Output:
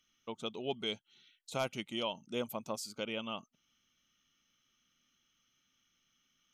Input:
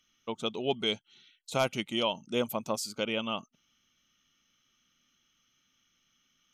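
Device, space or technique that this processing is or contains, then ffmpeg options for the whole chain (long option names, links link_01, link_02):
parallel compression: -filter_complex "[0:a]asplit=2[link_01][link_02];[link_02]acompressor=threshold=-47dB:ratio=6,volume=-6dB[link_03];[link_01][link_03]amix=inputs=2:normalize=0,volume=-7.5dB"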